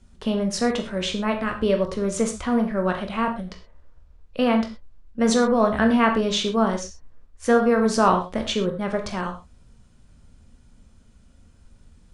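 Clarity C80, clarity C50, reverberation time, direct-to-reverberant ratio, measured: 13.0 dB, 9.5 dB, no single decay rate, 3.5 dB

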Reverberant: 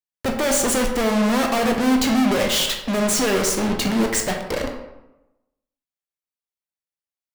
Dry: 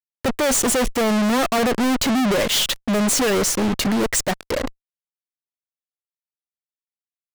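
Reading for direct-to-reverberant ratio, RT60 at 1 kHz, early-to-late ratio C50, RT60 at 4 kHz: 2.0 dB, 0.95 s, 5.5 dB, 0.60 s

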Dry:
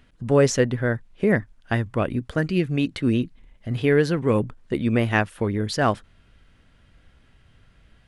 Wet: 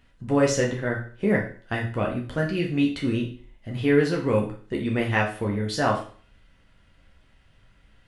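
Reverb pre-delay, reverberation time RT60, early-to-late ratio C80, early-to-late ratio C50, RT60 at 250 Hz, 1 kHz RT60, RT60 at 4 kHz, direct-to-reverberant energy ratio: 9 ms, 0.45 s, 12.5 dB, 7.5 dB, 0.45 s, 0.45 s, 0.40 s, -2.0 dB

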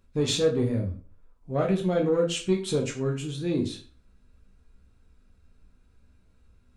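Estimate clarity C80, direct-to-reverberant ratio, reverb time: 14.5 dB, 0.5 dB, 0.40 s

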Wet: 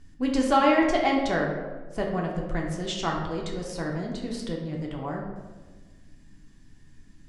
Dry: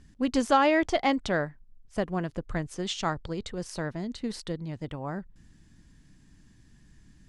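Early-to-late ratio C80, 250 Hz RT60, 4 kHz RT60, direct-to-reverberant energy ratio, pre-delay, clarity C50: 5.5 dB, 1.6 s, 0.75 s, -1.0 dB, 3 ms, 3.5 dB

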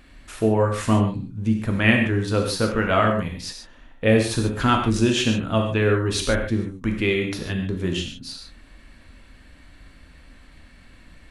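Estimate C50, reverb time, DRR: 5.0 dB, no single decay rate, 2.0 dB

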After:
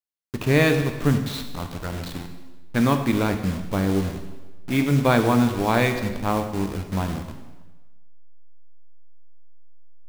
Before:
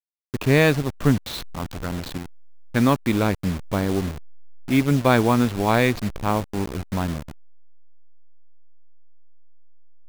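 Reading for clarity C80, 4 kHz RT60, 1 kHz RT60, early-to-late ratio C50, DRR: 9.5 dB, 1.1 s, 1.2 s, 8.0 dB, 5.5 dB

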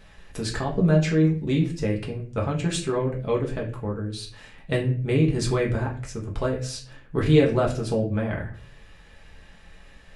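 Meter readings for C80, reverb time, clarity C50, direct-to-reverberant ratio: 14.5 dB, 0.45 s, 9.5 dB, -2.0 dB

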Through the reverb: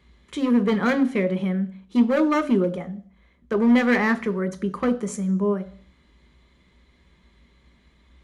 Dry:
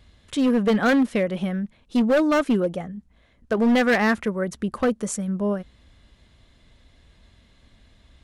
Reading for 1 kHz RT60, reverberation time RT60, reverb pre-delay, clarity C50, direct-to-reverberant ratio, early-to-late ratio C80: 0.55 s, 0.55 s, 3 ms, 17.5 dB, 9.5 dB, 20.5 dB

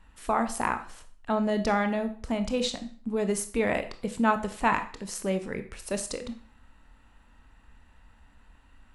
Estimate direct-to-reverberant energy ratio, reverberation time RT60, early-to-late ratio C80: 8.0 dB, 0.45 s, 16.0 dB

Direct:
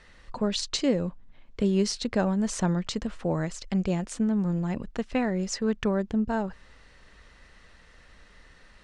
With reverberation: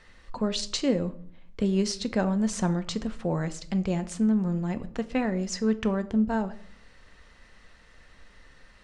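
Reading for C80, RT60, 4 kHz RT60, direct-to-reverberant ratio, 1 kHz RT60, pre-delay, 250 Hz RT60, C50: 19.5 dB, 0.60 s, 0.40 s, 10.5 dB, 0.55 s, 4 ms, 0.75 s, 16.0 dB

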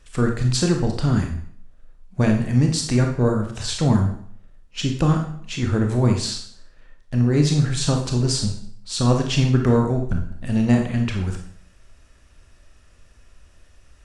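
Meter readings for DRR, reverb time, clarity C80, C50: 2.5 dB, 0.60 s, 10.0 dB, 5.5 dB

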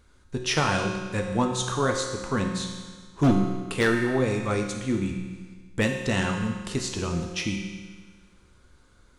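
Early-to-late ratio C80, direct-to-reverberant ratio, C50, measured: 5.5 dB, 1.5 dB, 4.0 dB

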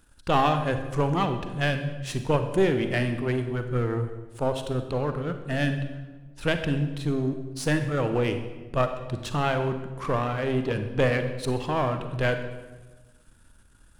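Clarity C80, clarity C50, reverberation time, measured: 10.0 dB, 8.5 dB, 1.3 s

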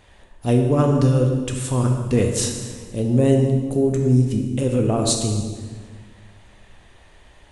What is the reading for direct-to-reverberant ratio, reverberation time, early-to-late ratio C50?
2.5 dB, 1.6 s, 4.5 dB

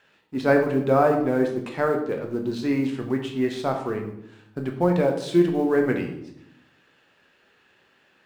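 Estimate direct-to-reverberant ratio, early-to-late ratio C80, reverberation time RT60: 2.5 dB, 10.0 dB, 0.75 s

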